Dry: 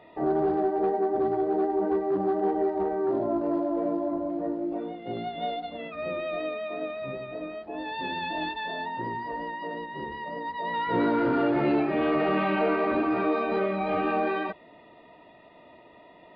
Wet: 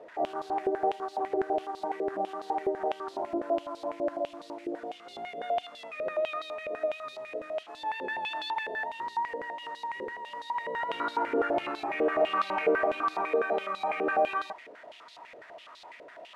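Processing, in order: one-bit delta coder 64 kbps, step -41 dBFS; step-sequenced band-pass 12 Hz 490–4000 Hz; trim +7.5 dB

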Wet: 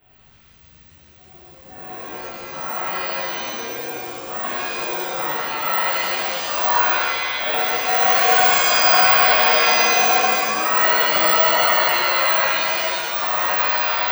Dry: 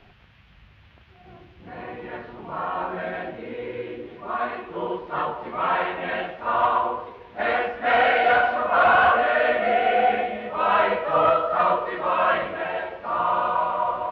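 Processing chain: 4.06–4.64 s: formants flattened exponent 0.6; careless resampling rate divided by 2×, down filtered, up zero stuff; pitch-shifted reverb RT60 2 s, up +7 st, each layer -2 dB, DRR -11.5 dB; trim -13 dB

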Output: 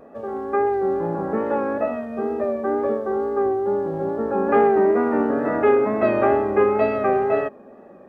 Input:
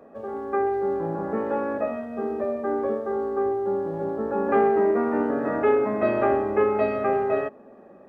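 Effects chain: wow and flutter 42 cents; trim +3.5 dB

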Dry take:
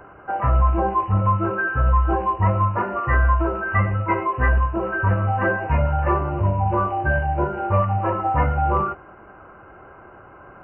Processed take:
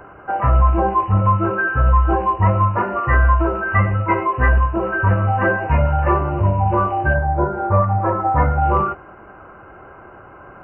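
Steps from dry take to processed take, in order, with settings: 7.13–8.60 s: low-pass 1.6 kHz -> 2.1 kHz 24 dB/octave; trim +3.5 dB

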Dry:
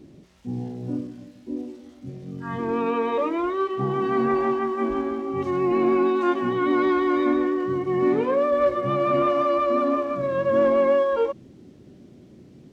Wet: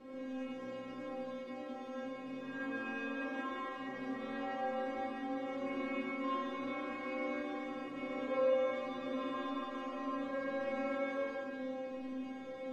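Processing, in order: spectral levelling over time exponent 0.4; inharmonic resonator 260 Hz, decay 0.66 s, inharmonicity 0.002; algorithmic reverb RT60 1.3 s, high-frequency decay 0.9×, pre-delay 35 ms, DRR -5.5 dB; trim -5 dB

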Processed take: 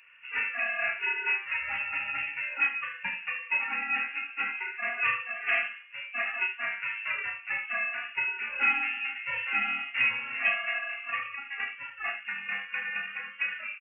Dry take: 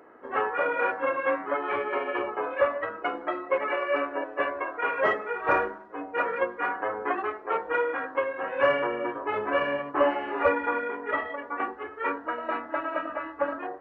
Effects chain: on a send: early reflections 30 ms -6 dB, 73 ms -10 dB; on the sum: frequency inversion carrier 3.1 kHz; trim -5 dB

